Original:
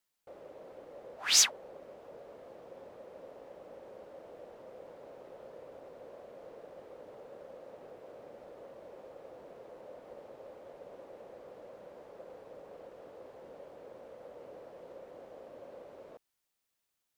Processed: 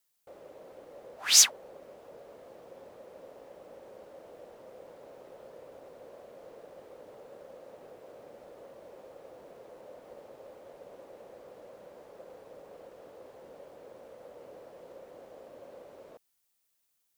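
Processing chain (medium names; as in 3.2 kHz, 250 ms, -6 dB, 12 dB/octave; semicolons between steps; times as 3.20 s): treble shelf 5.7 kHz +9 dB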